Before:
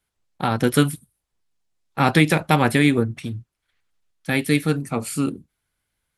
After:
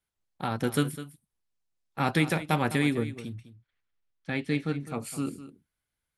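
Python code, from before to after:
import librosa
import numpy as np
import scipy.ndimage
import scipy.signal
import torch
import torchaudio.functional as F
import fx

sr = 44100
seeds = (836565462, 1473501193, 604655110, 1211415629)

y = fx.air_absorb(x, sr, metres=110.0, at=(3.34, 4.86), fade=0.02)
y = y + 10.0 ** (-14.0 / 20.0) * np.pad(y, (int(205 * sr / 1000.0), 0))[:len(y)]
y = y * librosa.db_to_amplitude(-9.0)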